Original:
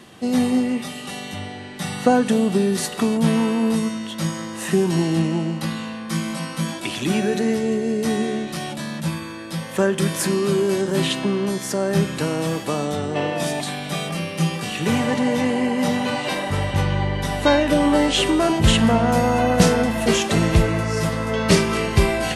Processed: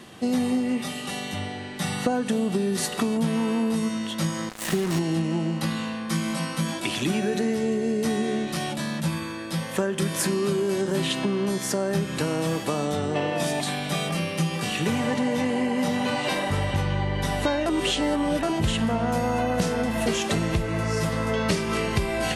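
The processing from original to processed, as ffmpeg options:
-filter_complex "[0:a]asettb=1/sr,asplit=3[a][b][c];[a]atrim=end=4.494[d];[b]atrim=start=4.49:end=4.99,asetpts=PTS-STARTPTS,afade=t=in:d=0.004:c=qsin,afade=t=out:st=0.496:d=0.004:c=qsin,acrusher=bits=3:mix=0:aa=0.5[e];[c]atrim=start=4.986[f];[d][e]acrossfade=d=0.004:c1=hsin:c2=qsin[g];[g][f]acrossfade=d=0.004:c1=qsin:c2=hsin,asplit=3[h][i][j];[h]atrim=end=17.662[k];[i]atrim=start=17.658:end=18.432,asetpts=PTS-STARTPTS,areverse[l];[j]atrim=start=18.428[m];[k][l]acrossfade=d=0.004:c1=hsin:c2=hsin[n];[n][m]acrossfade=d=0.004:c1=hsin:c2=hsin,acompressor=threshold=-21dB:ratio=6"

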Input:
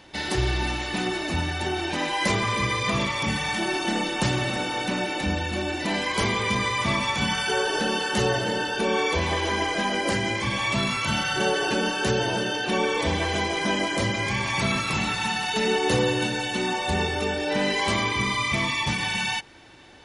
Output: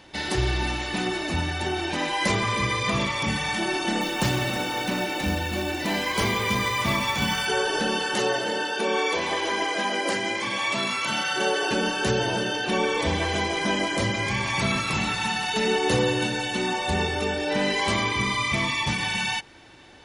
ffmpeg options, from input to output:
-filter_complex "[0:a]asettb=1/sr,asplit=3[a][b][c];[a]atrim=end=4.014[d];[b]atrim=start=4.01:end=7.46,asetpts=PTS-STARTPTS,afade=t=in:d=0.004:c=qsin,afade=t=out:st=3.446:d=0.004:c=qsin,acrusher=bits=4:mode=log:mix=0:aa=0.000001[e];[c]atrim=start=7.456[f];[d][e]acrossfade=d=0.004:c1=hsin:c2=qsin[g];[g][f]acrossfade=d=0.004:c1=qsin:c2=hsin,asettb=1/sr,asplit=3[h][i][j];[h]atrim=end=8.154[k];[i]atrim=start=8.15:end=11.71,asetpts=PTS-STARTPTS,afade=t=in:d=0.004:c=qsin,afade=t=out:st=3.556:d=0.004:c=qsin,highpass=270[l];[j]atrim=start=11.706[m];[k][l]acrossfade=d=0.004:c1=hsin:c2=qsin[n];[n][m]acrossfade=d=0.004:c1=qsin:c2=hsin"

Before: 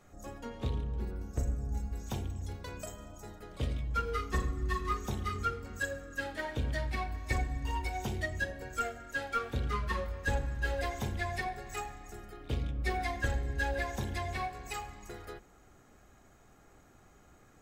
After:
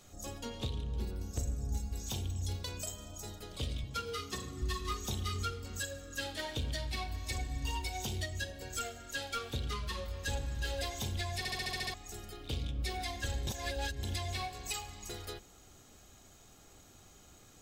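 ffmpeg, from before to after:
-filter_complex "[0:a]asettb=1/sr,asplit=3[a][b][c];[a]atrim=end=3.844[d];[b]atrim=start=3.84:end=4.62,asetpts=PTS-STARTPTS,afade=t=in:d=0.004:c=qsin,afade=t=out:st=0.776:d=0.004:c=qsin,highpass=f=87:w=0.5412,highpass=f=87:w=1.3066[e];[c]atrim=start=4.616[f];[d][e]acrossfade=d=0.004:c1=hsin:c2=qsin[g];[g][f]acrossfade=d=0.004:c1=qsin:c2=hsin,asplit=11[h][i][j][k][l][m][n][o][p][q][r];[h]atrim=end=11.452[s];[i]atrim=start=11.378:end=11.452[t];[j]atrim=start=11.378:end=11.452[u];[k]atrim=start=11.378:end=11.452[v];[l]atrim=start=11.378:end=11.452[w];[m]atrim=start=11.378:end=11.452[x];[n]atrim=start=11.378:end=11.452[y];[o]atrim=start=11.378:end=11.452[z];[p]atrim=start=11.938:end=13.472[aa];[q]atrim=start=13.468:end=14.032,asetpts=PTS-STARTPTS,areverse[ab];[r]atrim=start=14.028[ac];[s][t]acrossfade=d=0.004:c1=hsin:c2=hsin[ad];[ad][u]acrossfade=d=0.004:c1=hsin:c2=hsin[ae];[ae][v]acrossfade=d=0.004:c1=hsin:c2=hsin[af];[af][w]acrossfade=d=0.004:c1=hsin:c2=hsin[ag];[ag][x]acrossfade=d=0.004:c1=hsin:c2=hsin[ah];[ah][y]acrossfade=d=0.004:c1=hsin:c2=hsin[ai];[ai][z]acrossfade=d=0.004:c1=hsin:c2=hsin[aj];[aj][aa]acrossfade=d=0.004:c1=hsin:c2=hsin[ak];[ak][ab]acrossfade=d=0.004:c1=hsin:c2=hsin[al];[al][ac]acrossfade=d=0.004:c1=hsin:c2=hsin,highshelf=f=2.5k:t=q:w=1.5:g=9.5,alimiter=level_in=2.5dB:limit=-24dB:level=0:latency=1:release=368,volume=-2.5dB,equalizer=f=91:w=5.1:g=5"

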